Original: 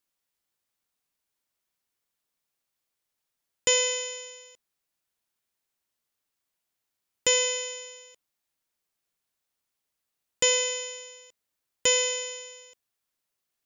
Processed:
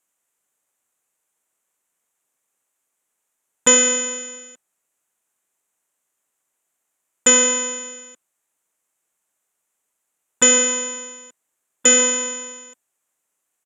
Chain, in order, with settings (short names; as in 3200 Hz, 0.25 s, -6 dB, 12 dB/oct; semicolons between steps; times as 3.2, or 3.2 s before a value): tone controls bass -14 dB, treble -9 dB; harmoniser -12 st -5 dB; resonant high shelf 5900 Hz +7.5 dB, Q 3; downsampling 32000 Hz; gain +7.5 dB